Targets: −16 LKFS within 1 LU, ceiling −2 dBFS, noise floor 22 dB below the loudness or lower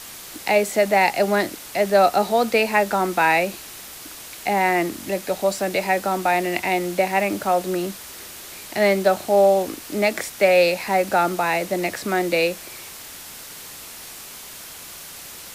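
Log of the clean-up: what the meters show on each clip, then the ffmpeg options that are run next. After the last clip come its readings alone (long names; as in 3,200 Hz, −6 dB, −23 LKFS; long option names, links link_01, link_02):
background noise floor −39 dBFS; target noise floor −43 dBFS; integrated loudness −20.5 LKFS; sample peak −4.5 dBFS; target loudness −16.0 LKFS
→ -af "afftdn=noise_reduction=6:noise_floor=-39"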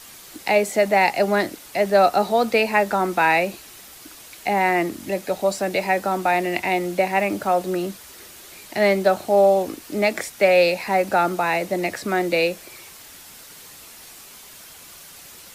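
background noise floor −44 dBFS; integrated loudness −20.5 LKFS; sample peak −4.5 dBFS; target loudness −16.0 LKFS
→ -af "volume=4.5dB,alimiter=limit=-2dB:level=0:latency=1"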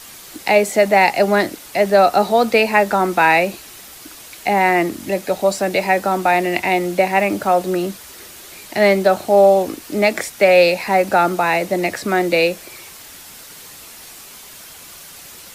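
integrated loudness −16.0 LKFS; sample peak −2.0 dBFS; background noise floor −39 dBFS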